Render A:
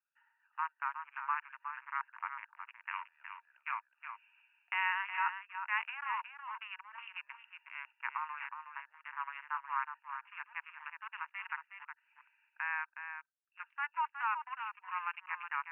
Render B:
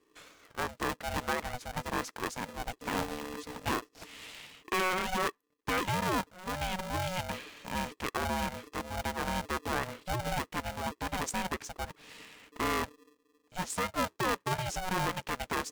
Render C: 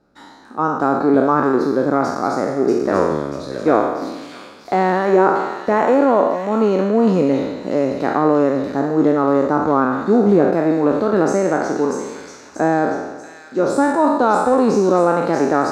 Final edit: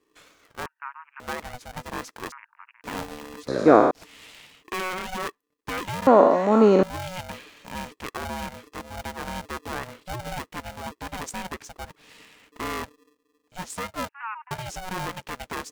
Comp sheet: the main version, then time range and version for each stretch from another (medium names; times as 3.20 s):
B
0.66–1.20 s: from A
2.32–2.84 s: from A
3.48–3.91 s: from C
6.07–6.83 s: from C
14.09–14.51 s: from A